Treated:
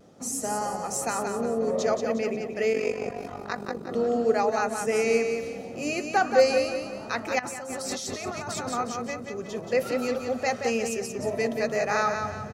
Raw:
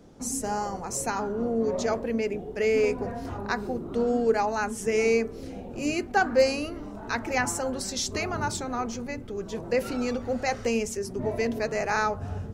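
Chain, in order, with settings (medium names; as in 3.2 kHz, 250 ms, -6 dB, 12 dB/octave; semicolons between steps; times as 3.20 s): high-pass 150 Hz 12 dB/octave; comb 1.6 ms, depth 34%; feedback delay 178 ms, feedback 41%, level -6 dB; vibrato 0.41 Hz 15 cents; 2.73–3.89 s: AM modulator 48 Hz, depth 60%; 7.39–8.69 s: compressor with a negative ratio -34 dBFS, ratio -1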